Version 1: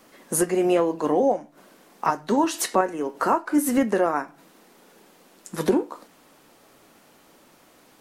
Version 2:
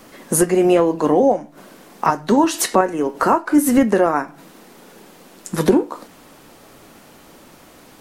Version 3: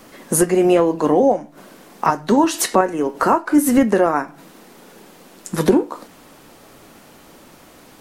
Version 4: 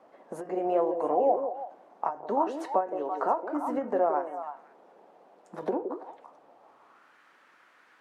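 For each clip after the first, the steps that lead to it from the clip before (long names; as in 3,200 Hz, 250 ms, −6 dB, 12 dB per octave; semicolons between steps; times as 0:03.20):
low-shelf EQ 150 Hz +8.5 dB; in parallel at −2 dB: downward compressor, threshold −29 dBFS, peak gain reduction 14.5 dB; on the sum: level +3.5 dB
no processing that can be heard
echo through a band-pass that steps 168 ms, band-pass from 380 Hz, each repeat 1.4 octaves, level −4 dB; band-pass filter sweep 700 Hz → 1,600 Hz, 0:06.53–0:07.16; every ending faded ahead of time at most 190 dB per second; level −5 dB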